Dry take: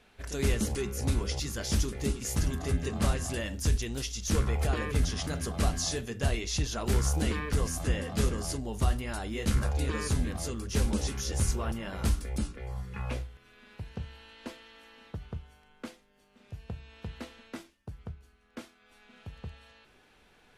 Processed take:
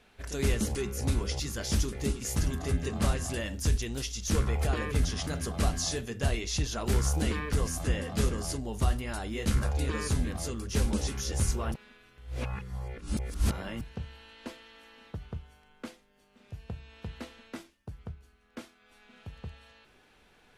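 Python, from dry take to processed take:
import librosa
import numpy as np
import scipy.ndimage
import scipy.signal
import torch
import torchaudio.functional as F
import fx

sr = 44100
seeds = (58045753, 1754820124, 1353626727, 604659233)

y = fx.edit(x, sr, fx.reverse_span(start_s=11.74, length_s=2.07), tone=tone)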